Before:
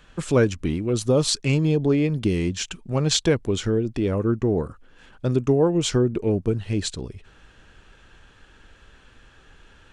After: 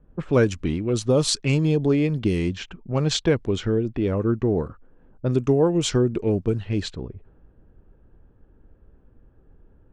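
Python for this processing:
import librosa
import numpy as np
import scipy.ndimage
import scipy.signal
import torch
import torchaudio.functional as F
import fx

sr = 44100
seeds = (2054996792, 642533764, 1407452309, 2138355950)

y = fx.lowpass(x, sr, hz=4000.0, slope=6, at=(3.04, 5.33))
y = fx.env_lowpass(y, sr, base_hz=400.0, full_db=-17.5)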